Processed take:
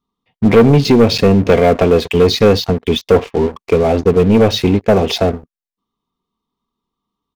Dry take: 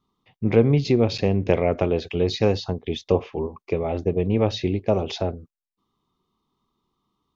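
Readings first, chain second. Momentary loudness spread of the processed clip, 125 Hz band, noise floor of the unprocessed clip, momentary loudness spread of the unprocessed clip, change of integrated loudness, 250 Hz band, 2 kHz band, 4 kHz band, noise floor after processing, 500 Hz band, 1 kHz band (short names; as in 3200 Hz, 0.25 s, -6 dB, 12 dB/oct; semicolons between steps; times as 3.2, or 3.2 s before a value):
7 LU, +8.0 dB, under -85 dBFS, 10 LU, +10.5 dB, +11.0 dB, +12.0 dB, +13.0 dB, under -85 dBFS, +11.0 dB, +12.5 dB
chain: comb 4.3 ms, depth 34%; sample leveller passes 3; gain +1.5 dB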